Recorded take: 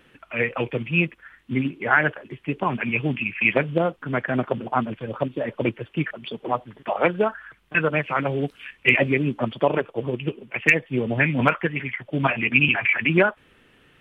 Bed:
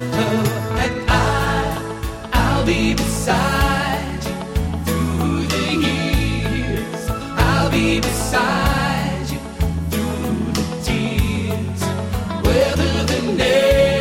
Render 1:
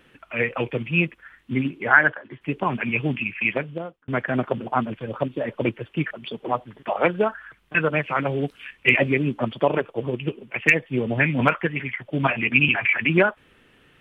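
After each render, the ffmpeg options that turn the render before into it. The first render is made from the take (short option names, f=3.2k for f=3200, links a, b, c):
-filter_complex "[0:a]asplit=3[a][b][c];[a]afade=t=out:st=1.92:d=0.02[d];[b]highpass=110,equalizer=f=170:t=q:w=4:g=-8,equalizer=f=410:t=q:w=4:g=-6,equalizer=f=1k:t=q:w=4:g=3,equalizer=f=1.6k:t=q:w=4:g=6,equalizer=f=2.6k:t=q:w=4:g=-8,lowpass=f=3.9k:w=0.5412,lowpass=f=3.9k:w=1.3066,afade=t=in:st=1.92:d=0.02,afade=t=out:st=2.4:d=0.02[e];[c]afade=t=in:st=2.4:d=0.02[f];[d][e][f]amix=inputs=3:normalize=0,asplit=2[g][h];[g]atrim=end=4.08,asetpts=PTS-STARTPTS,afade=t=out:st=3.19:d=0.89[i];[h]atrim=start=4.08,asetpts=PTS-STARTPTS,afade=t=in:d=0.004:c=hsin[j];[i][j]concat=n=2:v=0:a=1"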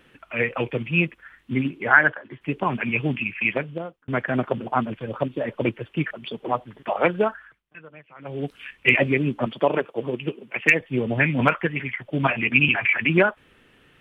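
-filter_complex "[0:a]asettb=1/sr,asplit=3[a][b][c];[a]atrim=end=9.464[d];[b]atrim=start=9.46:end=10.81,asetpts=PTS-STARTPTS,afade=t=in:d=0.004:c=qsin,afade=t=out:st=1.346:d=0.004:c=qsin,highpass=160[e];[c]atrim=start=10.806[f];[d][e]acrossfade=d=0.004:c1=hsin:c2=qsin[g];[g][f]acrossfade=d=0.004:c1=qsin:c2=hsin,asplit=3[h][i][j];[h]atrim=end=7.63,asetpts=PTS-STARTPTS,afade=t=out:st=7.27:d=0.36:silence=0.0707946[k];[i]atrim=start=7.63:end=8.19,asetpts=PTS-STARTPTS,volume=-23dB[l];[j]atrim=start=8.19,asetpts=PTS-STARTPTS,afade=t=in:d=0.36:silence=0.0707946[m];[k][l][m]concat=n=3:v=0:a=1"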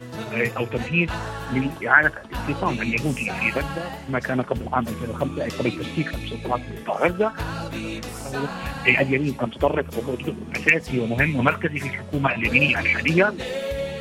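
-filter_complex "[1:a]volume=-14dB[a];[0:a][a]amix=inputs=2:normalize=0"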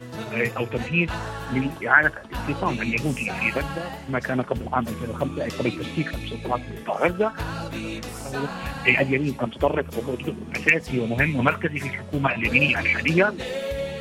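-af "volume=-1dB"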